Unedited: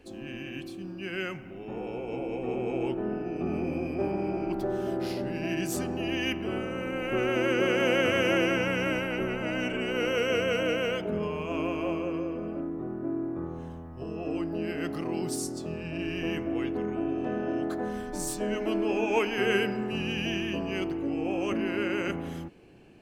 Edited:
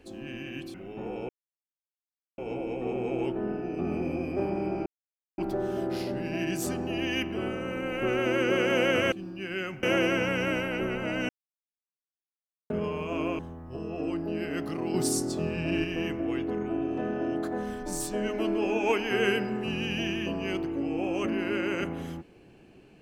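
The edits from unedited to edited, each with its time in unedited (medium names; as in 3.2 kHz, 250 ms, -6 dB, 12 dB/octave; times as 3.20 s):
0.74–1.45 s: move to 8.22 s
2.00 s: insert silence 1.09 s
4.48 s: insert silence 0.52 s
9.68–11.09 s: mute
11.78–13.66 s: delete
15.21–16.11 s: gain +5 dB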